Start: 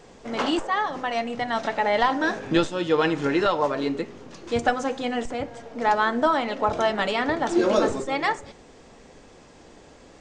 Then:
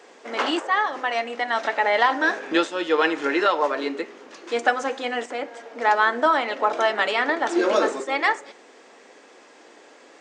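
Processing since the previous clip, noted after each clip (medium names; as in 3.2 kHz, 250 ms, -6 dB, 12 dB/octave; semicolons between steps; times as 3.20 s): high-pass 290 Hz 24 dB/octave; peaking EQ 1.8 kHz +5.5 dB 1.4 oct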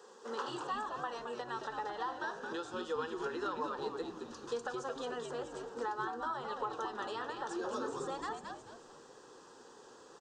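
compression 5:1, threshold -29 dBFS, peak gain reduction 14.5 dB; static phaser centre 440 Hz, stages 8; on a send: frequency-shifting echo 219 ms, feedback 33%, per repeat -99 Hz, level -5.5 dB; on the sum: trim -4.5 dB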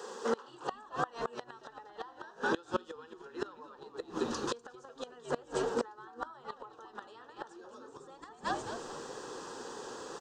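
inverted gate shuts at -31 dBFS, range -25 dB; trim +12 dB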